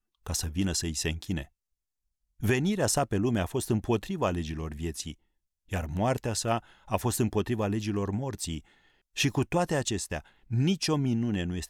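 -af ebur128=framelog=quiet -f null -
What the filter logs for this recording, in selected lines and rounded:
Integrated loudness:
  I:         -29.8 LUFS
  Threshold: -40.0 LUFS
Loudness range:
  LRA:         2.1 LU
  Threshold: -50.5 LUFS
  LRA low:   -31.6 LUFS
  LRA high:  -29.5 LUFS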